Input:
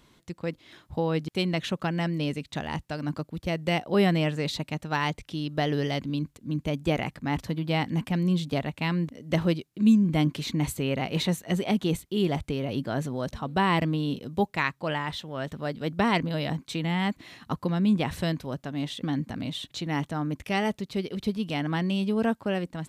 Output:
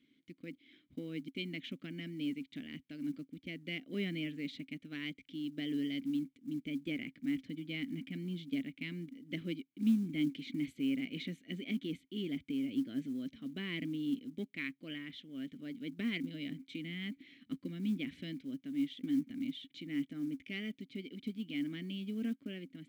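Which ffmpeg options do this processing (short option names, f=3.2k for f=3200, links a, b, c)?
-filter_complex "[0:a]aeval=exprs='0.299*(cos(1*acos(clip(val(0)/0.299,-1,1)))-cos(1*PI/2))+0.00211*(cos(4*acos(clip(val(0)/0.299,-1,1)))-cos(4*PI/2))+0.0075*(cos(6*acos(clip(val(0)/0.299,-1,1)))-cos(6*PI/2))':c=same,asplit=3[a][b][c];[a]bandpass=f=270:t=q:w=8,volume=0dB[d];[b]bandpass=f=2.29k:t=q:w=8,volume=-6dB[e];[c]bandpass=f=3.01k:t=q:w=8,volume=-9dB[f];[d][e][f]amix=inputs=3:normalize=0,acrusher=bits=8:mode=log:mix=0:aa=0.000001"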